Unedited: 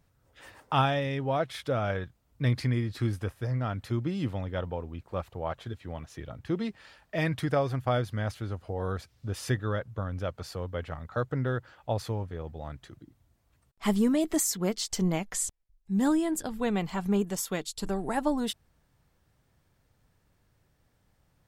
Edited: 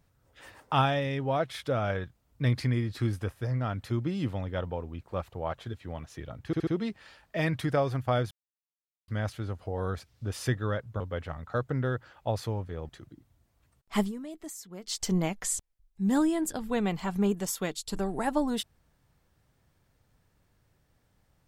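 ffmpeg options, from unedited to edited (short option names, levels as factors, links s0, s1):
-filter_complex "[0:a]asplit=9[s0][s1][s2][s3][s4][s5][s6][s7][s8];[s0]atrim=end=6.532[s9];[s1]atrim=start=6.458:end=6.532[s10];[s2]atrim=start=6.458:end=6.532[s11];[s3]atrim=start=6.458:end=8.1,asetpts=PTS-STARTPTS,afade=t=out:st=1.638:d=0.004:c=hsin,apad=pad_dur=0.77[s12];[s4]atrim=start=8.1:end=10.022,asetpts=PTS-STARTPTS,afade=t=in:d=0.004:c=hsin[s13];[s5]atrim=start=10.618:end=12.512[s14];[s6]atrim=start=12.788:end=14.02,asetpts=PTS-STARTPTS,afade=t=out:st=1.112:d=0.12:silence=0.177828[s15];[s7]atrim=start=14.02:end=14.72,asetpts=PTS-STARTPTS,volume=0.178[s16];[s8]atrim=start=14.72,asetpts=PTS-STARTPTS,afade=t=in:d=0.12:silence=0.177828[s17];[s9][s10]acrossfade=d=0.004:c1=hsin:c2=hsin[s18];[s18][s11]acrossfade=d=0.004:c1=hsin:c2=hsin[s19];[s12][s13]concat=n=2:v=0:a=1[s20];[s19][s20]acrossfade=d=0.004:c1=hsin:c2=hsin[s21];[s21][s14]acrossfade=d=0.004:c1=hsin:c2=hsin[s22];[s15][s16][s17]concat=n=3:v=0:a=1[s23];[s22][s23]acrossfade=d=0.004:c1=hsin:c2=hsin"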